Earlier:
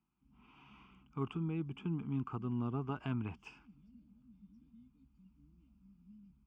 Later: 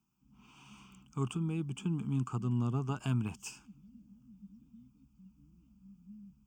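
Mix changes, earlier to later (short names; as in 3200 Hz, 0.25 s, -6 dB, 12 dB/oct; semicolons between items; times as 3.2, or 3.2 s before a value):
speech: remove air absorption 380 m; master: add thirty-one-band EQ 125 Hz +8 dB, 200 Hz +7 dB, 2000 Hz -8 dB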